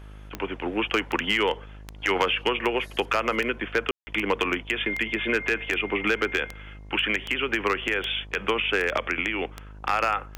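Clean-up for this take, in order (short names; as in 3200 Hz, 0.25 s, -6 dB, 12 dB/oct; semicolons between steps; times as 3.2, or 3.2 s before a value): clip repair -13.5 dBFS; de-click; de-hum 51.4 Hz, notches 22; room tone fill 3.91–4.07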